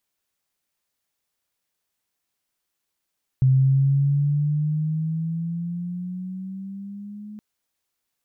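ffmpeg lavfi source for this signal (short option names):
-f lavfi -i "aevalsrc='pow(10,(-13-22*t/3.97)/20)*sin(2*PI*130*3.97/(8.5*log(2)/12)*(exp(8.5*log(2)/12*t/3.97)-1))':d=3.97:s=44100"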